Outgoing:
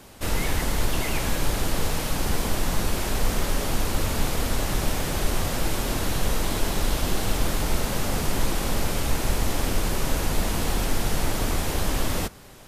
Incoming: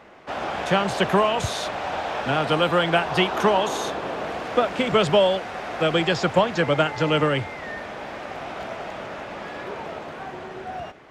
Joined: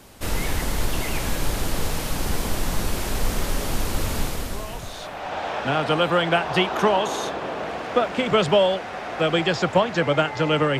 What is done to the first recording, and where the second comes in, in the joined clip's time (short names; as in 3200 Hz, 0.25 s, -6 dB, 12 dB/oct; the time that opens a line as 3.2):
outgoing
4.81 switch to incoming from 1.42 s, crossfade 1.28 s quadratic